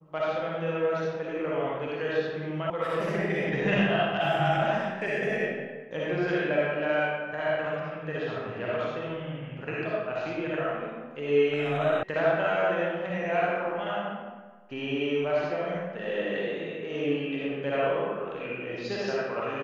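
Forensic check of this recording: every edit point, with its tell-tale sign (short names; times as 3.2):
2.7 sound cut off
12.03 sound cut off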